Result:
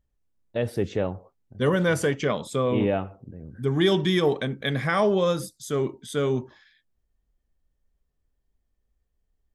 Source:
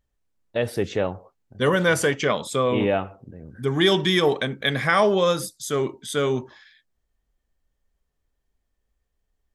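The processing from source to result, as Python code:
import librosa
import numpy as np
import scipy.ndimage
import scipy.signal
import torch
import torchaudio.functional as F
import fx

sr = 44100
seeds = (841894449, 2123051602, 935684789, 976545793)

y = fx.low_shelf(x, sr, hz=490.0, db=8.0)
y = y * 10.0 ** (-6.5 / 20.0)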